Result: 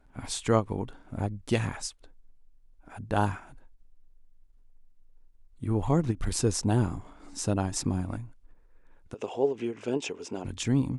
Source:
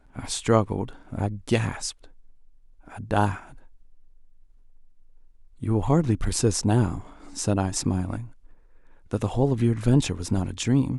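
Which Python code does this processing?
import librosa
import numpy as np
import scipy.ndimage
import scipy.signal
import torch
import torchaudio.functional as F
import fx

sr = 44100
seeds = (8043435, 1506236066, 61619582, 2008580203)

y = fx.cabinet(x, sr, low_hz=370.0, low_slope=12, high_hz=7000.0, hz=(420.0, 1200.0, 1800.0, 2700.0, 4100.0), db=(8, -5, -5, 6, -9), at=(9.14, 10.45))
y = fx.end_taper(y, sr, db_per_s=350.0)
y = F.gain(torch.from_numpy(y), -4.0).numpy()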